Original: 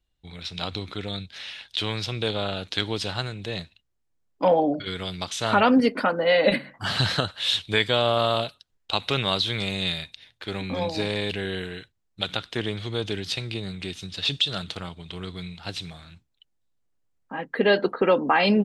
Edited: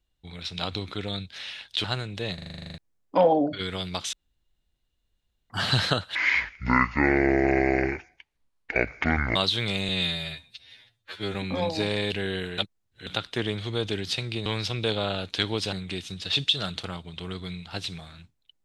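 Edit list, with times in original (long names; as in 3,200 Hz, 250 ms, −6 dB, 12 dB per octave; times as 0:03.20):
0:01.84–0:03.11: move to 0:13.65
0:03.61: stutter in place 0.04 s, 11 plays
0:05.40–0:06.77: fill with room tone
0:07.42–0:09.28: play speed 58%
0:09.81–0:10.54: time-stretch 2×
0:11.77–0:12.26: reverse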